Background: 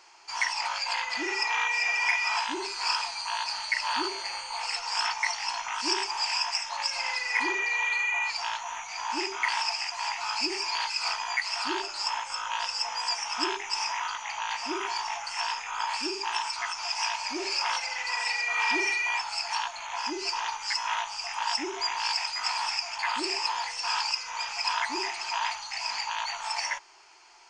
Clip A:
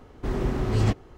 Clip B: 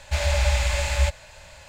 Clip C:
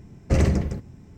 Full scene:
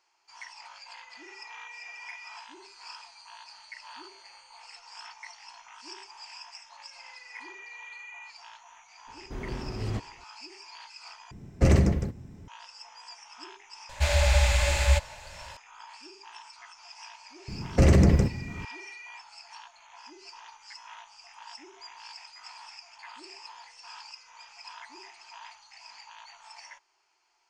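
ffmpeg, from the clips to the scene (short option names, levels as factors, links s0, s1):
-filter_complex "[3:a]asplit=2[s0][s1];[0:a]volume=0.141[s2];[s1]alimiter=level_in=7.5:limit=0.891:release=50:level=0:latency=1[s3];[s2]asplit=2[s4][s5];[s4]atrim=end=11.314[s6];[s0]atrim=end=1.17,asetpts=PTS-STARTPTS,volume=0.944[s7];[s5]atrim=start=12.476[s8];[1:a]atrim=end=1.17,asetpts=PTS-STARTPTS,volume=0.316,afade=t=in:d=0.004:c=hsin,afade=t=out:st=1.166:d=0.004:c=hsin,adelay=9070[s9];[2:a]atrim=end=1.68,asetpts=PTS-STARTPTS,volume=0.944,afade=t=in:d=0.004:c=hsin,afade=t=out:st=1.676:d=0.004:c=hsin,adelay=13890[s10];[s3]atrim=end=1.17,asetpts=PTS-STARTPTS,volume=0.335,afade=t=in:d=0.004:c=hsin,afade=t=out:st=1.166:d=0.004:c=hsin,adelay=770868S[s11];[s6][s7]acrossfade=d=0.004:c1=hsin:c2=hsin[s12];[s12][s8]acrossfade=d=0.004:c1=hsin:c2=hsin[s13];[s13][s9][s10][s11]amix=inputs=4:normalize=0"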